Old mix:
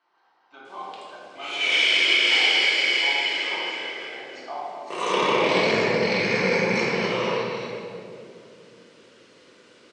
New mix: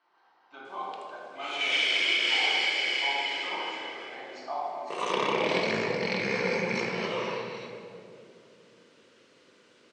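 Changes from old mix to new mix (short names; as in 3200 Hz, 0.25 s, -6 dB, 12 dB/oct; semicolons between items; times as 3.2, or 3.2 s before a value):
background: send -9.0 dB; master: add high shelf 7000 Hz -5 dB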